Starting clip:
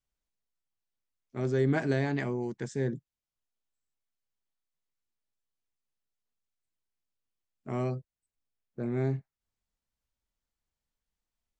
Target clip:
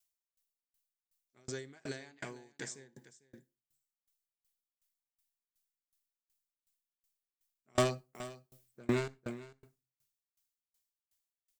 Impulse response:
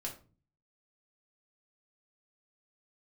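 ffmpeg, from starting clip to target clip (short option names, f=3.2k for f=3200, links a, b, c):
-filter_complex "[0:a]lowshelf=f=390:g=-8.5,alimiter=level_in=0.5dB:limit=-24dB:level=0:latency=1:release=221,volume=-0.5dB,crystalizer=i=6:c=0,asettb=1/sr,asplit=3[a][b][c];[a]atrim=end=7.754[d];[b]atrim=start=7.75:end=9.08,asetpts=PTS-STARTPTS,afade=t=in:d=0.004:c=qsin,afade=t=out:st=1.326:d=0.004:c=qsin,aeval=exprs='0.133*sin(PI/2*3.98*val(0)/0.133)':c=same[e];[c]atrim=start=9.076[f];[d][e]acrossfade=d=0.004:c1=hsin:c2=qsin[g];[g][f]acrossfade=d=0.004:c1=qsin:c2=hsin,aecho=1:1:449:0.299,asplit=2[h][i];[1:a]atrim=start_sample=2205,adelay=60[j];[i][j]afir=irnorm=-1:irlink=0,volume=-16.5dB[k];[h][k]amix=inputs=2:normalize=0,aeval=exprs='val(0)*pow(10,-33*if(lt(mod(2.7*n/s,1),2*abs(2.7)/1000),1-mod(2.7*n/s,1)/(2*abs(2.7)/1000),(mod(2.7*n/s,1)-2*abs(2.7)/1000)/(1-2*abs(2.7)/1000))/20)':c=same,volume=-2dB"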